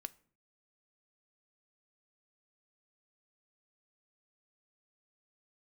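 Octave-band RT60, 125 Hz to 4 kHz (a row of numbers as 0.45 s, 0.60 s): 0.65 s, 0.65 s, 0.55 s, 0.45 s, 0.45 s, 0.35 s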